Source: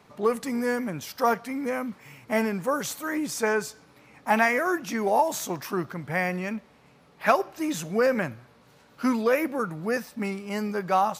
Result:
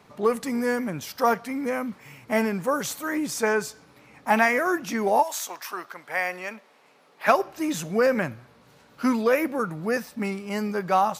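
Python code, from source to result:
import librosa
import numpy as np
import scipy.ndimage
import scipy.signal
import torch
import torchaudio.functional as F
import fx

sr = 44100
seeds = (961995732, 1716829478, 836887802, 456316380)

y = fx.highpass(x, sr, hz=fx.line((5.22, 1000.0), (7.27, 330.0)), slope=12, at=(5.22, 7.27), fade=0.02)
y = y * 10.0 ** (1.5 / 20.0)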